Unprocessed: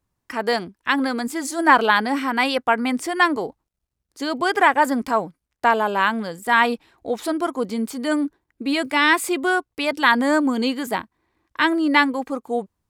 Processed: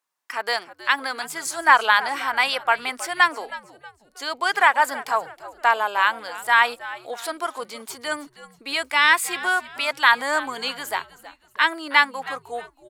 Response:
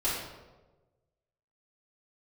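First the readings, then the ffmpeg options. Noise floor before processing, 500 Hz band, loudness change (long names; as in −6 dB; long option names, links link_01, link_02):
−80 dBFS, −7.0 dB, −0.5 dB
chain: -filter_complex "[0:a]highpass=870,asplit=2[link_01][link_02];[link_02]asplit=3[link_03][link_04][link_05];[link_03]adelay=318,afreqshift=-110,volume=-17dB[link_06];[link_04]adelay=636,afreqshift=-220,volume=-25.9dB[link_07];[link_05]adelay=954,afreqshift=-330,volume=-34.7dB[link_08];[link_06][link_07][link_08]amix=inputs=3:normalize=0[link_09];[link_01][link_09]amix=inputs=2:normalize=0,volume=1.5dB"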